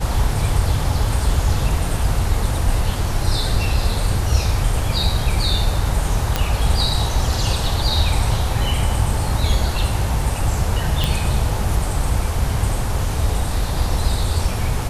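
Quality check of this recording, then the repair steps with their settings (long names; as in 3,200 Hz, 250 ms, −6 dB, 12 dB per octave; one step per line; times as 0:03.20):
0:06.36: click −3 dBFS
0:11.04: click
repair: click removal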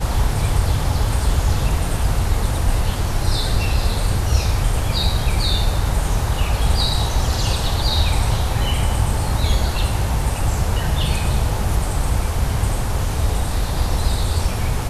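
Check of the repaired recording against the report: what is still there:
none of them is left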